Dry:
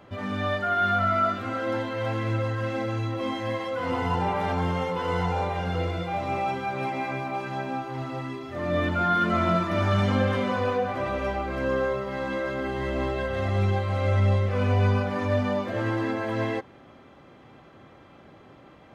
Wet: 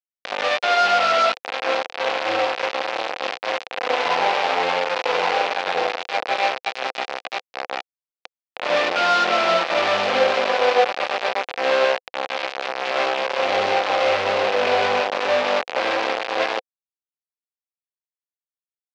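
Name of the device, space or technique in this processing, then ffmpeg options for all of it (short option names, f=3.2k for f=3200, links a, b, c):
hand-held game console: -af "acrusher=bits=3:mix=0:aa=0.000001,highpass=490,equalizer=f=510:t=q:w=4:g=8,equalizer=f=750:t=q:w=4:g=7,equalizer=f=2.5k:t=q:w=4:g=4,lowpass=f=4.7k:w=0.5412,lowpass=f=4.7k:w=1.3066,volume=3.5dB"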